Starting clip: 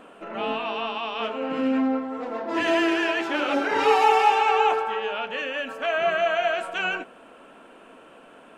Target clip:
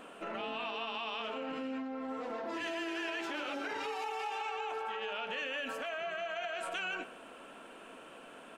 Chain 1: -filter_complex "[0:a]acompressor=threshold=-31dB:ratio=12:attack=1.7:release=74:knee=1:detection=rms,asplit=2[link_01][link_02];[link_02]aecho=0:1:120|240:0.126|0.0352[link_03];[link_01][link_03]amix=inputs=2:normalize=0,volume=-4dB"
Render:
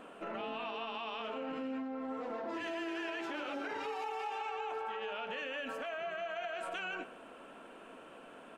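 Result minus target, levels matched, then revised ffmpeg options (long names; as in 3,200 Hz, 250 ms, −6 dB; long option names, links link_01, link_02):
4,000 Hz band −3.0 dB
-filter_complex "[0:a]acompressor=threshold=-31dB:ratio=12:attack=1.7:release=74:knee=1:detection=rms,highshelf=frequency=2300:gain=7,asplit=2[link_01][link_02];[link_02]aecho=0:1:120|240:0.126|0.0352[link_03];[link_01][link_03]amix=inputs=2:normalize=0,volume=-4dB"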